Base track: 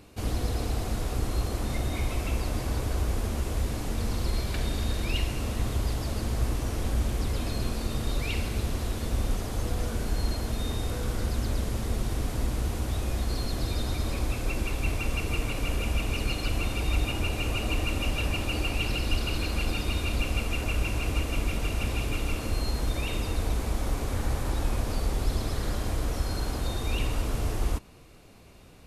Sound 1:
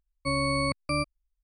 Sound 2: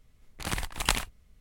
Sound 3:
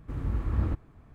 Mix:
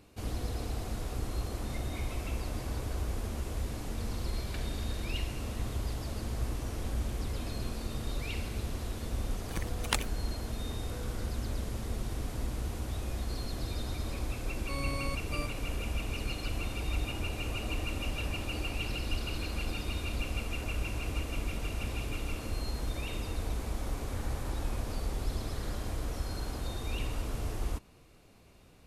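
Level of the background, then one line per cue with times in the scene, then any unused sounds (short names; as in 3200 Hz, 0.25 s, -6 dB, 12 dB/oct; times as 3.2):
base track -6.5 dB
9.04 add 2 -3 dB + per-bin expansion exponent 2
14.43 add 1 -11.5 dB
not used: 3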